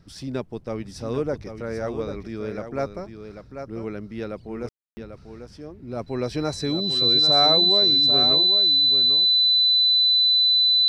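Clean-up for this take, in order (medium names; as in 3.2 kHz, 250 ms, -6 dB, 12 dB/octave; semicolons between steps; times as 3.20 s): band-stop 4 kHz, Q 30; room tone fill 4.69–4.97 s; inverse comb 793 ms -8.5 dB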